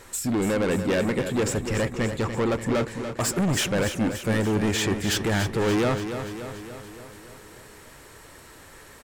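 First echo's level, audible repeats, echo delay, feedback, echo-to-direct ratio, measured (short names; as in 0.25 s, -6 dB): -9.0 dB, 6, 0.288 s, 60%, -7.0 dB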